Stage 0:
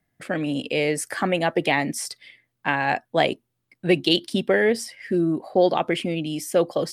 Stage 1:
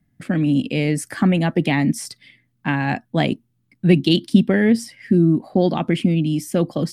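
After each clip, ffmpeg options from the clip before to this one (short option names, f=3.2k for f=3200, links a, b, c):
-af "lowshelf=f=330:t=q:w=1.5:g=11,volume=-1dB"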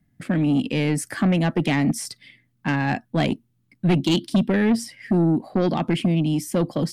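-af "asoftclip=type=tanh:threshold=-13.5dB"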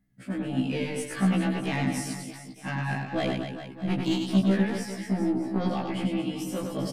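-af "tremolo=f=1.6:d=0.36,aecho=1:1:100|230|399|618.7|904.3:0.631|0.398|0.251|0.158|0.1,afftfilt=real='re*1.73*eq(mod(b,3),0)':imag='im*1.73*eq(mod(b,3),0)':win_size=2048:overlap=0.75,volume=-3.5dB"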